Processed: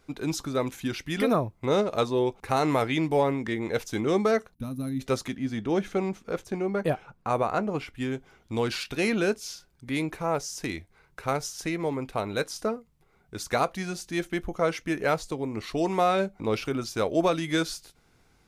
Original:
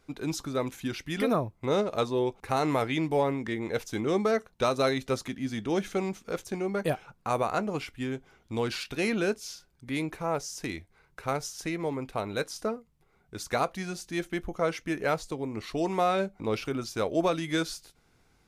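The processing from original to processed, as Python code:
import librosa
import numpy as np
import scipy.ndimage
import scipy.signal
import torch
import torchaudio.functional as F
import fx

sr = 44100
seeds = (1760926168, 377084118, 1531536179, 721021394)

y = fx.spec_box(x, sr, start_s=4.55, length_s=0.45, low_hz=280.0, high_hz=9600.0, gain_db=-22)
y = fx.high_shelf(y, sr, hz=3100.0, db=-8.5, at=(5.36, 7.95))
y = y * librosa.db_to_amplitude(2.5)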